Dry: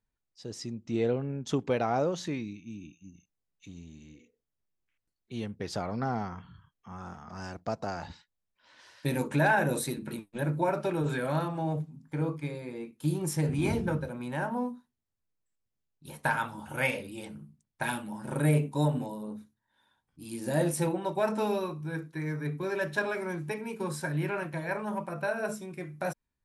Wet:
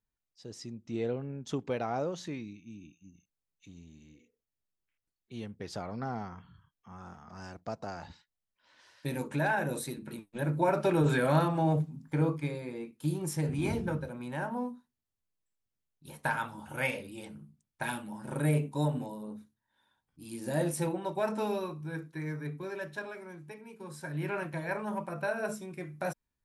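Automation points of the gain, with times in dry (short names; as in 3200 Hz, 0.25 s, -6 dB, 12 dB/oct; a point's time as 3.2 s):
10.1 s -5 dB
10.96 s +4 dB
12 s +4 dB
13.18 s -3 dB
22.29 s -3 dB
23.28 s -12 dB
23.82 s -12 dB
24.33 s -1.5 dB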